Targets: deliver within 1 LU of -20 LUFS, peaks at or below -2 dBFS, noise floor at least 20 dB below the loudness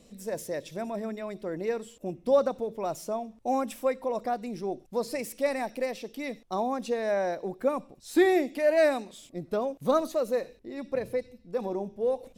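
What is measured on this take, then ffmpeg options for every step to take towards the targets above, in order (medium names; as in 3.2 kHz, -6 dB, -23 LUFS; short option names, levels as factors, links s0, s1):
loudness -30.0 LUFS; peak level -12.5 dBFS; loudness target -20.0 LUFS
-> -af "volume=3.16"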